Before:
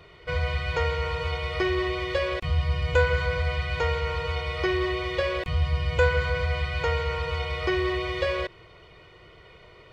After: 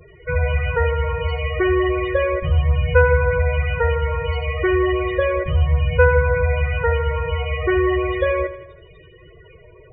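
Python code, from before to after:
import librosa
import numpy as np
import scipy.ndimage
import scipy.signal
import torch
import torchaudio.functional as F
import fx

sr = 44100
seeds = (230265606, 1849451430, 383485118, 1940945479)

p1 = fx.spec_topn(x, sr, count=16)
p2 = p1 + fx.echo_feedback(p1, sr, ms=81, feedback_pct=55, wet_db=-14, dry=0)
y = p2 * 10.0 ** (7.5 / 20.0)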